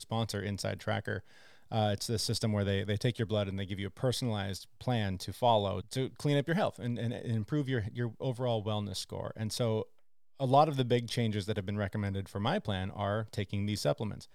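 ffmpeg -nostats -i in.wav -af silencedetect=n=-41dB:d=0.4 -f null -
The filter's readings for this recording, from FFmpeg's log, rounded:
silence_start: 1.20
silence_end: 1.72 | silence_duration: 0.52
silence_start: 9.83
silence_end: 10.40 | silence_duration: 0.57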